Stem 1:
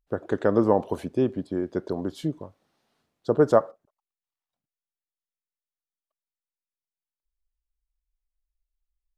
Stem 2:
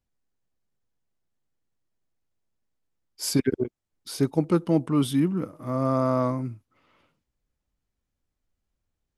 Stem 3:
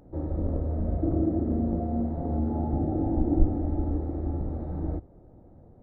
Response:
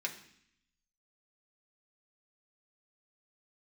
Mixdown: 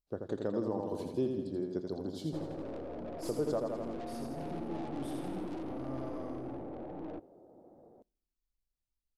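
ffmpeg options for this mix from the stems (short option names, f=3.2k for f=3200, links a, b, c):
-filter_complex "[0:a]equalizer=f=4.5k:t=o:w=0.74:g=8,volume=-10dB,asplit=3[a][b][c];[b]volume=-13dB[d];[c]volume=-4dB[e];[1:a]asoftclip=type=tanh:threshold=-20dB,volume=-18dB,asplit=2[f][g];[g]volume=-3dB[h];[2:a]highpass=460,tiltshelf=f=1.4k:g=4,aeval=exprs='(tanh(112*val(0)+0.4)-tanh(0.4))/112':c=same,adelay=2200,volume=3dB,asplit=2[i][j];[j]volume=-22dB[k];[3:a]atrim=start_sample=2205[l];[d][k]amix=inputs=2:normalize=0[m];[m][l]afir=irnorm=-1:irlink=0[n];[e][h]amix=inputs=2:normalize=0,aecho=0:1:83|166|249|332|415|498|581|664|747:1|0.59|0.348|0.205|0.121|0.0715|0.0422|0.0249|0.0147[o];[a][f][i][n][o]amix=inputs=5:normalize=0,equalizer=f=1.7k:t=o:w=1.7:g=-9.5,alimiter=limit=-23dB:level=0:latency=1:release=297"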